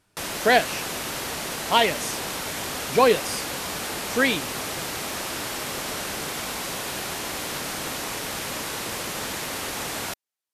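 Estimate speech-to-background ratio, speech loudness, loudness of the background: 6.0 dB, −23.0 LKFS, −29.0 LKFS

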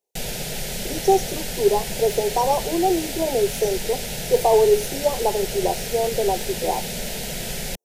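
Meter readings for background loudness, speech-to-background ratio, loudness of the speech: −28.5 LKFS, 6.0 dB, −22.5 LKFS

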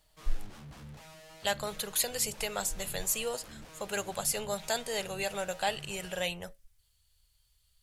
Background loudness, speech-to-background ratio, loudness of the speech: −50.5 LKFS, 17.0 dB, −33.5 LKFS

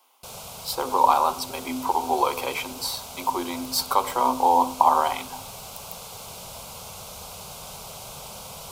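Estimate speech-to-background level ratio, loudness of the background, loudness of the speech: 14.5 dB, −38.0 LKFS, −23.5 LKFS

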